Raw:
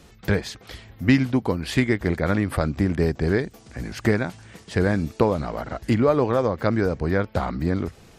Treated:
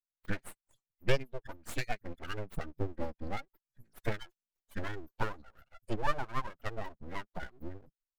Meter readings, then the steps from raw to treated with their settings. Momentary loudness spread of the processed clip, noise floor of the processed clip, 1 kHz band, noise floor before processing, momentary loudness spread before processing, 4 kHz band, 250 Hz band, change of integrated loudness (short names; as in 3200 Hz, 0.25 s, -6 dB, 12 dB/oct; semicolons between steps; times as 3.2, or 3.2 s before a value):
14 LU, under -85 dBFS, -10.5 dB, -51 dBFS, 11 LU, -10.5 dB, -22.5 dB, -16.5 dB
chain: per-bin expansion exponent 3; full-wave rectifier; gain -4.5 dB